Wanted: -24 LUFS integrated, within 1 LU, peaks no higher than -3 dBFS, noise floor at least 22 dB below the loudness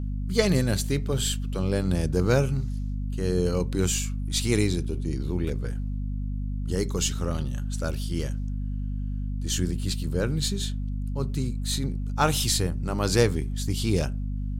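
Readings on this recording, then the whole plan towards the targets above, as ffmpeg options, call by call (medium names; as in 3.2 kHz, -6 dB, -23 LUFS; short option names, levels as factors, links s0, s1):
hum 50 Hz; highest harmonic 250 Hz; hum level -27 dBFS; loudness -27.5 LUFS; peak level -7.0 dBFS; loudness target -24.0 LUFS
-> -af "bandreject=f=50:t=h:w=4,bandreject=f=100:t=h:w=4,bandreject=f=150:t=h:w=4,bandreject=f=200:t=h:w=4,bandreject=f=250:t=h:w=4"
-af "volume=1.5"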